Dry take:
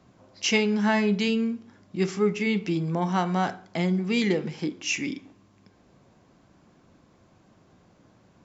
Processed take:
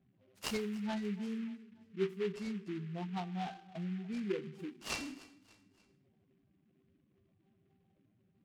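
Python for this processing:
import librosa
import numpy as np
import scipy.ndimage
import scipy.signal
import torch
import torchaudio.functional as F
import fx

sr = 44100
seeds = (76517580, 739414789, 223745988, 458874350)

y = fx.spec_expand(x, sr, power=2.5)
y = fx.comb_fb(y, sr, f0_hz=390.0, decay_s=0.54, harmonics='all', damping=0.0, mix_pct=90)
y = fx.echo_feedback(y, sr, ms=292, feedback_pct=46, wet_db=-20.0)
y = fx.noise_mod_delay(y, sr, seeds[0], noise_hz=2000.0, depth_ms=0.067)
y = y * 10.0 ** (4.5 / 20.0)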